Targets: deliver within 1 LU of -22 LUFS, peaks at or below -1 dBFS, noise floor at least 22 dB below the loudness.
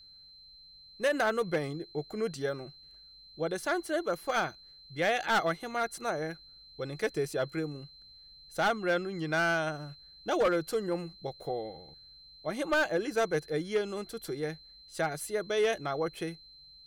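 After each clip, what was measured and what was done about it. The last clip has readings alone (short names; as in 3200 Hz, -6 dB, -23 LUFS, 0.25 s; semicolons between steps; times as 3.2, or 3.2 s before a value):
clipped 0.8%; flat tops at -21.5 dBFS; steady tone 4100 Hz; tone level -52 dBFS; loudness -32.0 LUFS; peak -21.5 dBFS; loudness target -22.0 LUFS
-> clip repair -21.5 dBFS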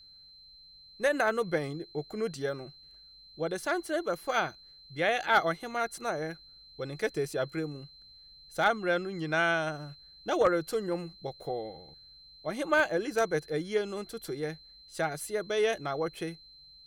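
clipped 0.0%; steady tone 4100 Hz; tone level -52 dBFS
-> notch 4100 Hz, Q 30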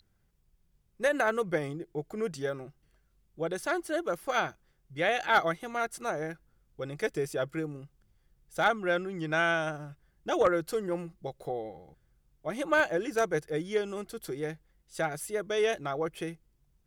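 steady tone none; loudness -31.5 LUFS; peak -12.5 dBFS; loudness target -22.0 LUFS
-> gain +9.5 dB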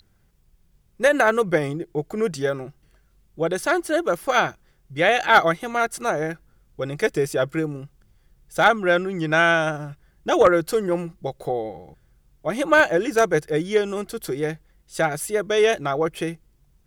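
loudness -22.0 LUFS; peak -3.0 dBFS; noise floor -61 dBFS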